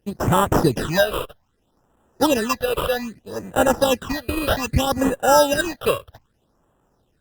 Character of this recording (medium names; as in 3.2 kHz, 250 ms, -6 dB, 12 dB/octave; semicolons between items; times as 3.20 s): aliases and images of a low sample rate 2.2 kHz, jitter 0%; phasing stages 8, 0.63 Hz, lowest notch 230–4900 Hz; Opus